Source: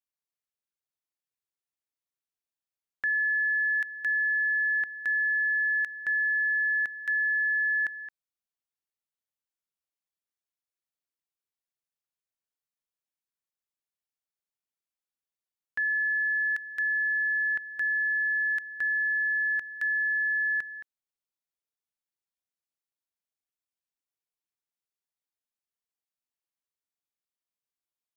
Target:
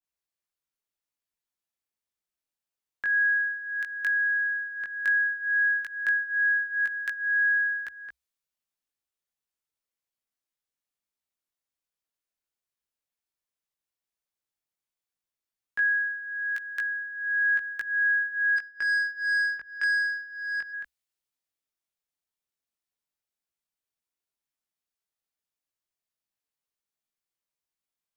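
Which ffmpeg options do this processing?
-filter_complex "[0:a]acompressor=threshold=0.0316:ratio=6,afreqshift=-65,flanger=delay=16.5:depth=3.9:speed=0.12,asplit=3[s0][s1][s2];[s0]afade=t=out:st=18.56:d=0.02[s3];[s1]adynamicsmooth=sensitivity=3.5:basefreq=1400,afade=t=in:st=18.56:d=0.02,afade=t=out:st=20.72:d=0.02[s4];[s2]afade=t=in:st=20.72:d=0.02[s5];[s3][s4][s5]amix=inputs=3:normalize=0,adynamicequalizer=threshold=0.00447:dfrequency=1600:dqfactor=0.7:tfrequency=1600:tqfactor=0.7:attack=5:release=100:ratio=0.375:range=4:mode=boostabove:tftype=highshelf,volume=1.68"

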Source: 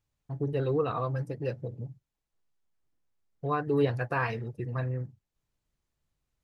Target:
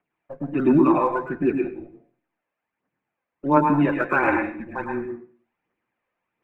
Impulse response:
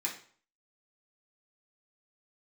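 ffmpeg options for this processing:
-filter_complex "[0:a]highpass=f=350:t=q:w=0.5412,highpass=f=350:t=q:w=1.307,lowpass=f=2700:t=q:w=0.5176,lowpass=f=2700:t=q:w=0.7071,lowpass=f=2700:t=q:w=1.932,afreqshift=-140,aphaser=in_gain=1:out_gain=1:delay=2:decay=0.59:speed=1.4:type=triangular,asplit=2[s0][s1];[1:a]atrim=start_sample=2205,adelay=104[s2];[s1][s2]afir=irnorm=-1:irlink=0,volume=0.531[s3];[s0][s3]amix=inputs=2:normalize=0,volume=2.82"

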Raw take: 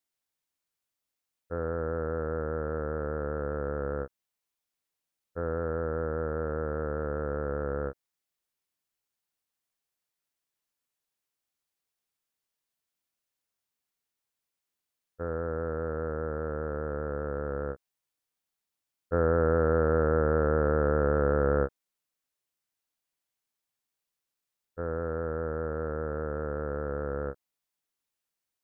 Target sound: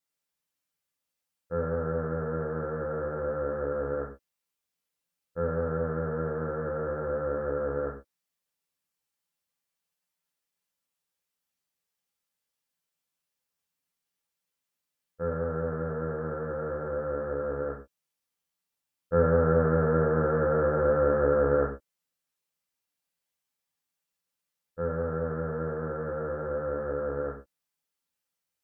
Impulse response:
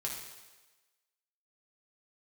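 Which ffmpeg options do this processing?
-filter_complex "[1:a]atrim=start_sample=2205,atrim=end_sample=6615,asetrate=57330,aresample=44100[s0];[0:a][s0]afir=irnorm=-1:irlink=0,volume=1.26"

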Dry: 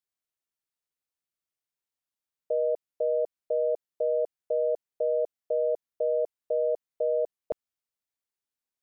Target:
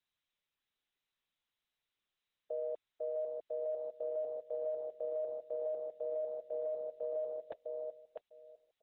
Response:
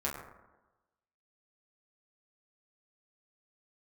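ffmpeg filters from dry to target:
-af "aderivative,aecho=1:1:653|1306|1959:0.668|0.107|0.0171,volume=3.35" -ar 48000 -c:a libopus -b:a 8k

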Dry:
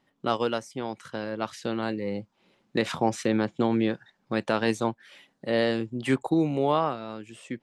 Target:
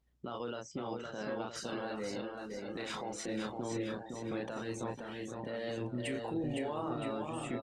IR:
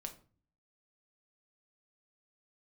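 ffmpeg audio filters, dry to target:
-filter_complex "[0:a]asplit=2[s0][s1];[s1]adelay=33,volume=0.562[s2];[s0][s2]amix=inputs=2:normalize=0,acompressor=threshold=0.0355:ratio=16,asplit=3[s3][s4][s5];[s3]afade=t=out:st=1.15:d=0.02[s6];[s4]lowshelf=f=260:g=-9.5,afade=t=in:st=1.15:d=0.02,afade=t=out:st=3.19:d=0.02[s7];[s5]afade=t=in:st=3.19:d=0.02[s8];[s6][s7][s8]amix=inputs=3:normalize=0,aeval=exprs='val(0)+0.000631*(sin(2*PI*60*n/s)+sin(2*PI*2*60*n/s)/2+sin(2*PI*3*60*n/s)/3+sin(2*PI*4*60*n/s)/4+sin(2*PI*5*60*n/s)/5)':c=same,highshelf=f=5500:g=6,alimiter=level_in=1.58:limit=0.0631:level=0:latency=1:release=11,volume=0.631,aecho=1:1:510|969|1382|1754|2089:0.631|0.398|0.251|0.158|0.1,afftdn=nr=14:nf=-48,volume=0.794" -ar 48000 -c:a libopus -b:a 24k

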